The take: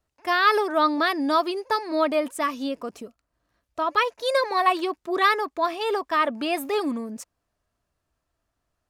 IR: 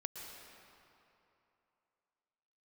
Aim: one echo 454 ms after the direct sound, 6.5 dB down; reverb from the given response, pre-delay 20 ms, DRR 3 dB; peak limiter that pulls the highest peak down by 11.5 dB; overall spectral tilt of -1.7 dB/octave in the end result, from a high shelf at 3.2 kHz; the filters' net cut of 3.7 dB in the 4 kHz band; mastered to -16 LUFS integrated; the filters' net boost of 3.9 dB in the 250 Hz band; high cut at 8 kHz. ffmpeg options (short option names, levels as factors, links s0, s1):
-filter_complex "[0:a]lowpass=8000,equalizer=f=250:t=o:g=5,highshelf=f=3200:g=3,equalizer=f=4000:t=o:g=-6.5,alimiter=limit=0.112:level=0:latency=1,aecho=1:1:454:0.473,asplit=2[s0][s1];[1:a]atrim=start_sample=2205,adelay=20[s2];[s1][s2]afir=irnorm=-1:irlink=0,volume=0.841[s3];[s0][s3]amix=inputs=2:normalize=0,volume=2.82"